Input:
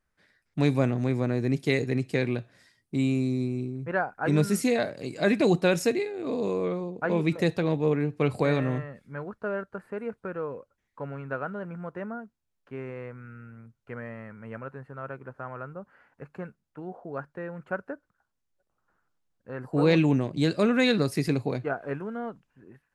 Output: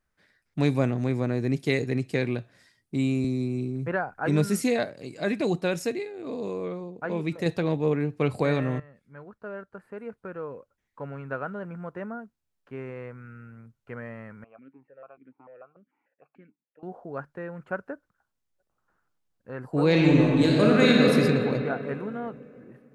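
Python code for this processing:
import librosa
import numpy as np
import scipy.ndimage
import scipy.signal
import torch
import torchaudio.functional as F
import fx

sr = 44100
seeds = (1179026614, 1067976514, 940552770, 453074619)

y = fx.band_squash(x, sr, depth_pct=70, at=(3.24, 4.2))
y = fx.vowel_held(y, sr, hz=6.8, at=(14.44, 16.83))
y = fx.reverb_throw(y, sr, start_s=19.9, length_s=1.2, rt60_s=2.9, drr_db=-3.0)
y = fx.edit(y, sr, fx.clip_gain(start_s=4.84, length_s=2.62, db=-4.0),
    fx.fade_in_from(start_s=8.8, length_s=2.53, floor_db=-12.0), tone=tone)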